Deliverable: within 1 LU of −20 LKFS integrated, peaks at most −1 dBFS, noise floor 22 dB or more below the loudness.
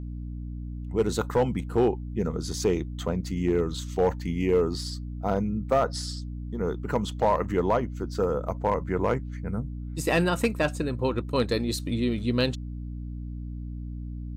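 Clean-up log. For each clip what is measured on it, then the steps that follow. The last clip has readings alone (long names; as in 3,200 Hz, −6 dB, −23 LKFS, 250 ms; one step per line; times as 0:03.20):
share of clipped samples 0.4%; peaks flattened at −15.0 dBFS; mains hum 60 Hz; hum harmonics up to 300 Hz; level of the hum −32 dBFS; integrated loudness −28.0 LKFS; sample peak −15.0 dBFS; target loudness −20.0 LKFS
→ clipped peaks rebuilt −15 dBFS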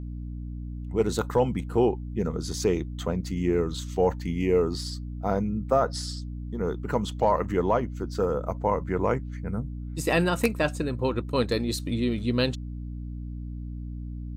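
share of clipped samples 0.0%; mains hum 60 Hz; hum harmonics up to 300 Hz; level of the hum −32 dBFS
→ mains-hum notches 60/120/180/240/300 Hz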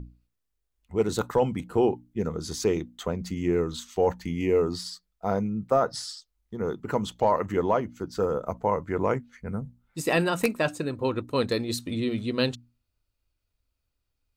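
mains hum none found; integrated loudness −27.5 LKFS; sample peak −7.0 dBFS; target loudness −20.0 LKFS
→ level +7.5 dB
brickwall limiter −1 dBFS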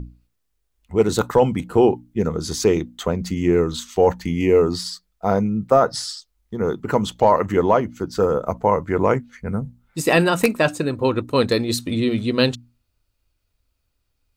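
integrated loudness −20.0 LKFS; sample peak −1.0 dBFS; background noise floor −72 dBFS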